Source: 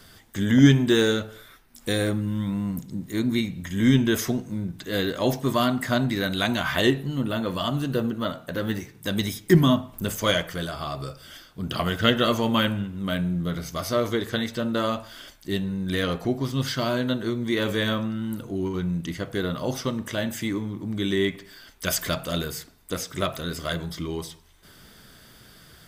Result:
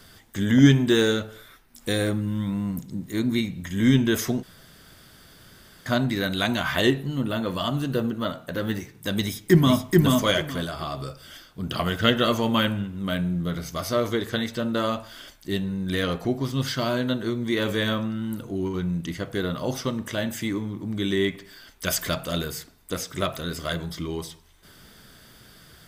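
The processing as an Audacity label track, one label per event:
4.430000	5.860000	room tone
9.220000	9.890000	echo throw 0.43 s, feedback 20%, level -1.5 dB

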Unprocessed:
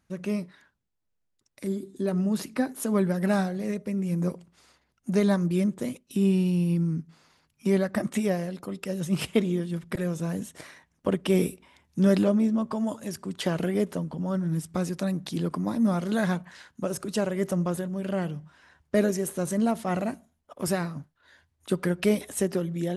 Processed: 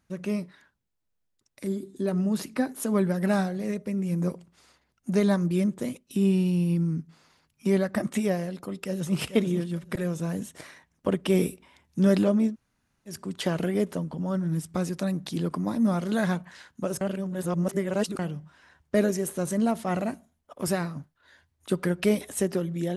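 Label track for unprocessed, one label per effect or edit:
8.470000	9.190000	echo throw 0.44 s, feedback 20%, level -9.5 dB
12.510000	13.100000	room tone, crossfade 0.10 s
17.010000	18.190000	reverse

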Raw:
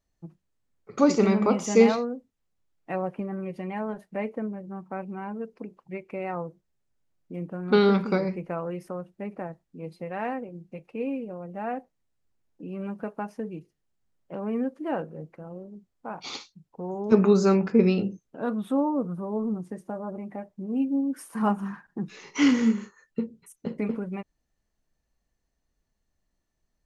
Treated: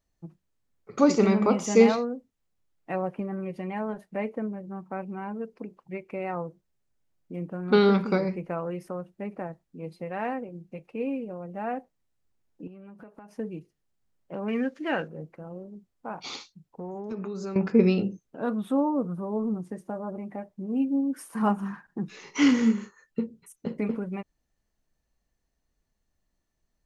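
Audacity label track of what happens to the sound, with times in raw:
12.670000	13.340000	compressor 20:1, threshold -42 dBFS
14.480000	15.080000	band shelf 3200 Hz +12 dB 2.5 oct
16.240000	17.560000	compressor, threshold -32 dBFS

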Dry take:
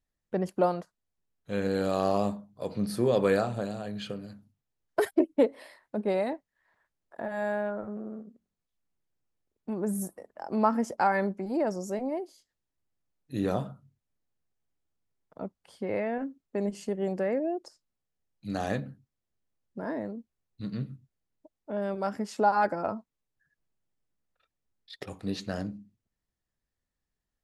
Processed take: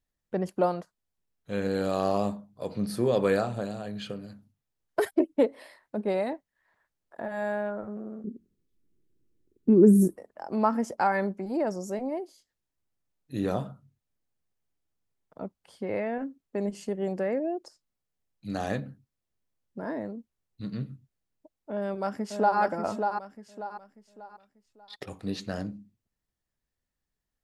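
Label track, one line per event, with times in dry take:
8.240000	10.160000	resonant low shelf 510 Hz +11.5 dB, Q 3
21.710000	22.590000	echo throw 0.59 s, feedback 35%, level -5 dB

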